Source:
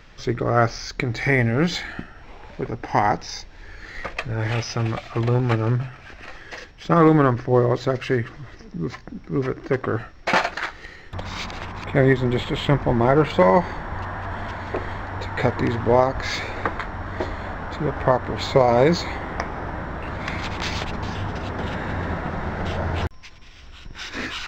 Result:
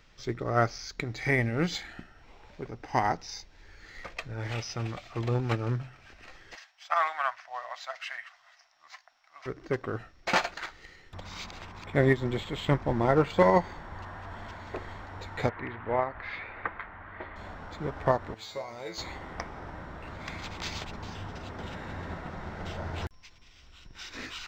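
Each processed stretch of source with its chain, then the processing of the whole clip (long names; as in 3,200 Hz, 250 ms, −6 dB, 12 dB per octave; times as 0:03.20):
0:06.55–0:09.46: dynamic equaliser 2,300 Hz, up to +6 dB, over −37 dBFS, Q 0.99 + elliptic high-pass filter 670 Hz
0:15.49–0:17.36: low-pass filter 2,300 Hz 24 dB per octave + tilt shelving filter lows −7 dB, about 1,100 Hz
0:18.34–0:18.98: spectral tilt +2 dB per octave + tuned comb filter 110 Hz, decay 0.31 s, mix 90%
whole clip: high-shelf EQ 3,900 Hz +7.5 dB; notch filter 1,700 Hz, Q 25; expander for the loud parts 1.5 to 1, over −26 dBFS; level −5 dB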